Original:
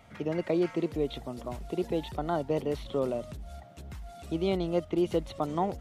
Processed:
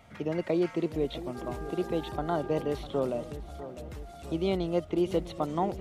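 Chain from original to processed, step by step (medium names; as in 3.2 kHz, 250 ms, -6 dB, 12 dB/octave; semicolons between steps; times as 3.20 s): 1.34–2.77 s: mains buzz 400 Hz, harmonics 4, -43 dBFS -5 dB/octave; filtered feedback delay 651 ms, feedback 56%, low-pass 2.6 kHz, level -13.5 dB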